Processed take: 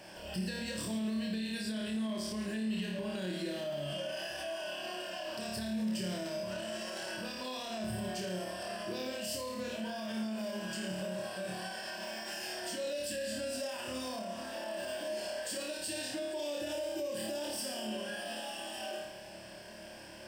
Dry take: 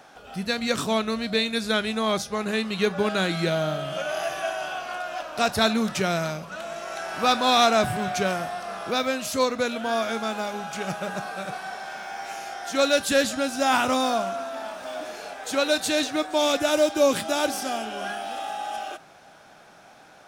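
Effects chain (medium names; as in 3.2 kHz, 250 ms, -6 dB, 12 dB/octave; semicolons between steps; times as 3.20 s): compression 4:1, threshold -35 dBFS, peak gain reduction 16.5 dB; rippled EQ curve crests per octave 1.3, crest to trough 13 dB; flutter echo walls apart 4.7 m, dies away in 0.71 s; peak limiter -27 dBFS, peak gain reduction 11 dB; band noise 1.7–2.7 kHz -61 dBFS; peaking EQ 1.2 kHz -11 dB 1.3 oct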